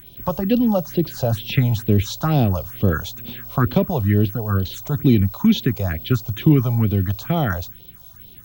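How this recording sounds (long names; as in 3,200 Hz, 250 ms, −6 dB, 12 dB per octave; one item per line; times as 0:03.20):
phaser sweep stages 4, 2.2 Hz, lowest notch 280–1,600 Hz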